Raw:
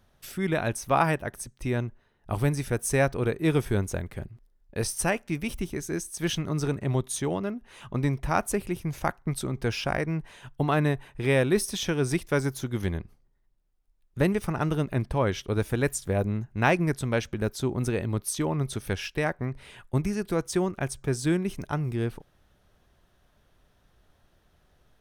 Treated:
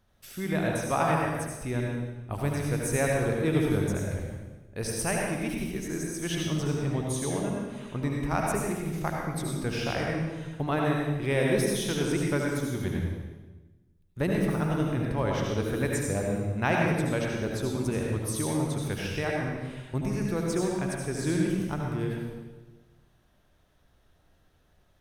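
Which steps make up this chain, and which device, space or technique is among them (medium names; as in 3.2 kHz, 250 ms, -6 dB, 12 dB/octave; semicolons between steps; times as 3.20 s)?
bathroom (reverberation RT60 1.2 s, pre-delay 67 ms, DRR -1.5 dB); trim -5 dB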